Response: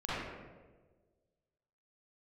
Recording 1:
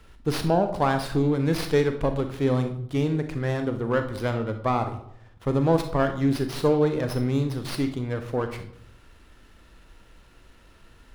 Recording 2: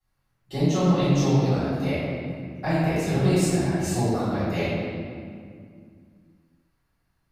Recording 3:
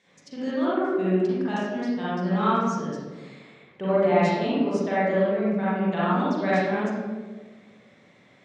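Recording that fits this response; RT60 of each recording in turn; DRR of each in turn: 3; 0.75, 2.2, 1.4 s; 7.5, -16.5, -10.5 dB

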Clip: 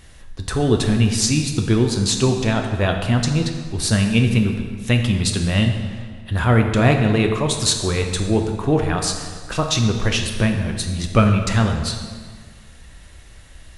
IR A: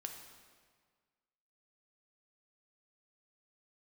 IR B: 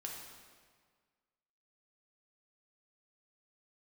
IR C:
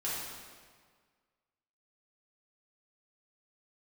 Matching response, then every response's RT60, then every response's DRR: A; 1.7, 1.7, 1.7 s; 3.5, -1.0, -8.5 dB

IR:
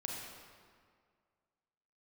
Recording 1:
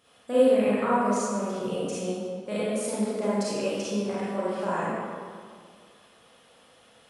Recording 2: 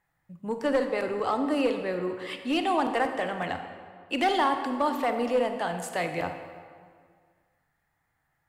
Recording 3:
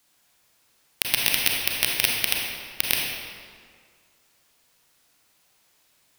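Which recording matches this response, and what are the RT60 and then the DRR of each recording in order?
3; 2.0, 1.9, 2.0 s; -10.0, 6.5, -1.5 dB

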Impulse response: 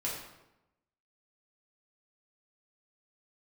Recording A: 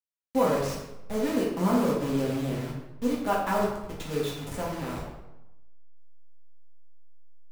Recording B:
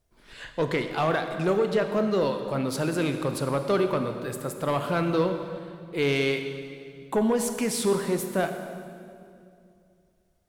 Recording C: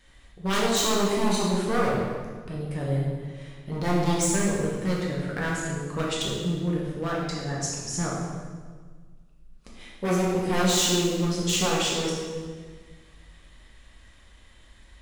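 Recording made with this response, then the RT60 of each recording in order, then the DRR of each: A; 0.95, 2.5, 1.6 s; -6.0, 6.5, -5.0 dB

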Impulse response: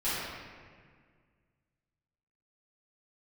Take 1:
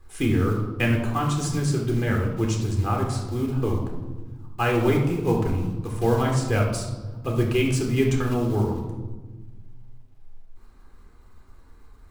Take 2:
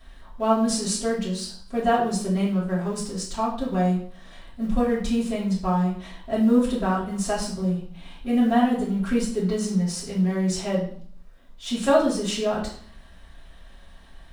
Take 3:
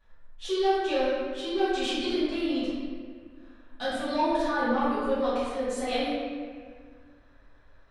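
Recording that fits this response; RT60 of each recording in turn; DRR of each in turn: 3; 1.3, 0.55, 1.8 s; 0.5, -7.5, -14.5 dB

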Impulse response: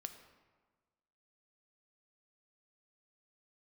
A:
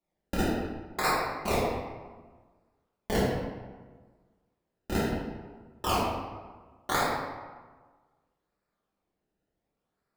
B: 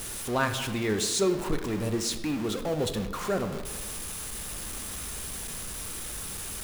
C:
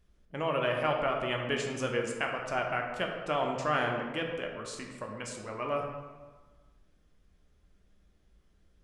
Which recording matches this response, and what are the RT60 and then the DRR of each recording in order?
B; 1.4, 1.4, 1.4 s; -7.0, 7.5, 1.0 dB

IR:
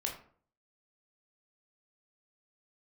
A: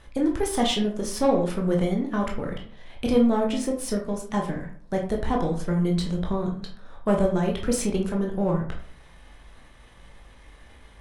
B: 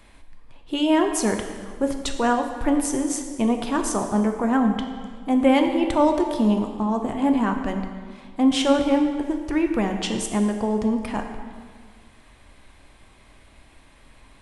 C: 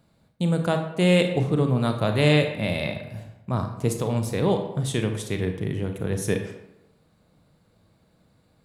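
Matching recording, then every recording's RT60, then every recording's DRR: A; 0.50, 1.8, 0.90 s; 0.0, 4.0, 5.5 dB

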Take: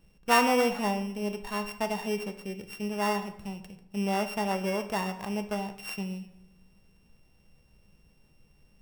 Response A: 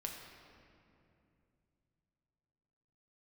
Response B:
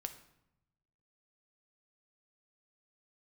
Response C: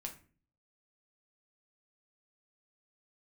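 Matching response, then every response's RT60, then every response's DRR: B; 2.7, 0.85, 0.40 s; 0.5, 7.0, 1.5 dB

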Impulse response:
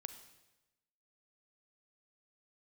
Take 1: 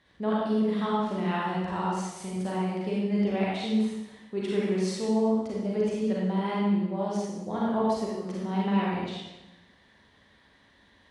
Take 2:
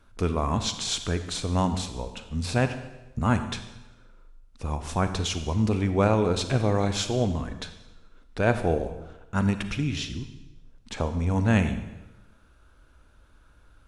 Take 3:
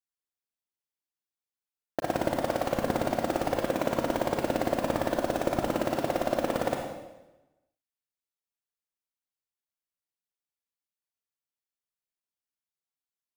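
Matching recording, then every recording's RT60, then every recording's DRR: 2; 1.0, 1.0, 1.0 s; -6.0, 9.0, 1.0 dB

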